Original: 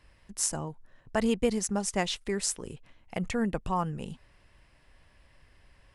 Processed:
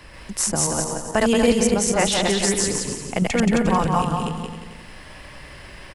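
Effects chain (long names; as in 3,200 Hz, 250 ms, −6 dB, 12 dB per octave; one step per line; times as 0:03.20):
feedback delay that plays each chunk backwards 134 ms, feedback 41%, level 0 dB
repeating echo 176 ms, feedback 25%, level −5.5 dB
multiband upward and downward compressor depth 40%
level +7 dB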